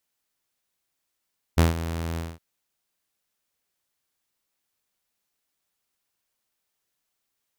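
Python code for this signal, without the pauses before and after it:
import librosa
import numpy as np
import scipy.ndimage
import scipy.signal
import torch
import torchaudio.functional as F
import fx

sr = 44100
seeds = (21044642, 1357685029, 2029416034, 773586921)

y = fx.adsr_tone(sr, wave='saw', hz=82.8, attack_ms=18.0, decay_ms=147.0, sustain_db=-14.0, held_s=0.6, release_ms=216.0, level_db=-11.0)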